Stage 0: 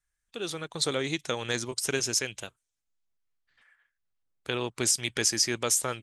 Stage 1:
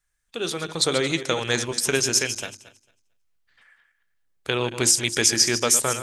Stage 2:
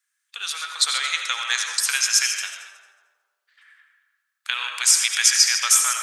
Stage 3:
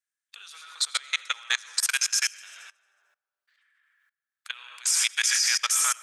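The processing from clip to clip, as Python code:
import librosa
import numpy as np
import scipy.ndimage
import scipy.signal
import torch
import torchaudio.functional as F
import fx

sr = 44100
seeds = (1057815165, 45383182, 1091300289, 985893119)

y1 = fx.reverse_delay_fb(x, sr, ms=112, feedback_pct=41, wet_db=-10.5)
y1 = fx.hum_notches(y1, sr, base_hz=50, count=7)
y1 = F.gain(torch.from_numpy(y1), 6.5).numpy()
y2 = scipy.signal.sosfilt(scipy.signal.butter(4, 1200.0, 'highpass', fs=sr, output='sos'), y1)
y2 = fx.rev_freeverb(y2, sr, rt60_s=1.7, hf_ratio=0.3, predelay_ms=45, drr_db=3.5)
y2 = F.gain(torch.from_numpy(y2), 2.5).numpy()
y3 = fx.level_steps(y2, sr, step_db=23)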